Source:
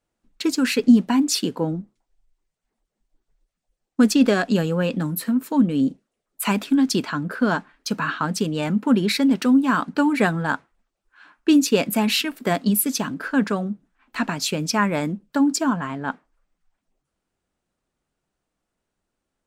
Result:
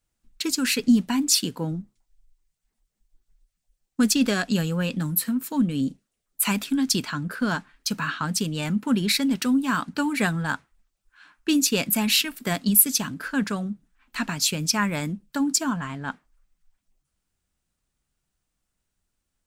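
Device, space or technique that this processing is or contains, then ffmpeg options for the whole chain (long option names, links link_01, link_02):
smiley-face EQ: -af "lowshelf=frequency=160:gain=6,equalizer=frequency=460:width_type=o:width=2.8:gain=-9,highshelf=frequency=5700:gain=7"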